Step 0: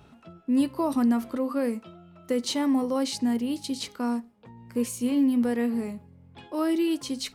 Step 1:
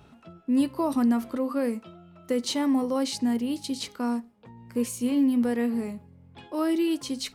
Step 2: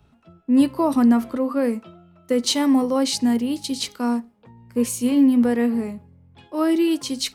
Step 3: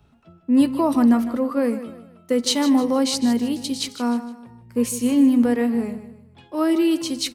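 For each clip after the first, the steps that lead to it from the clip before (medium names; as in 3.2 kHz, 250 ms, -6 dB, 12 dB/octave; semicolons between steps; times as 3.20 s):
no audible change
three bands expanded up and down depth 40%; trim +6 dB
feedback delay 154 ms, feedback 35%, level -13 dB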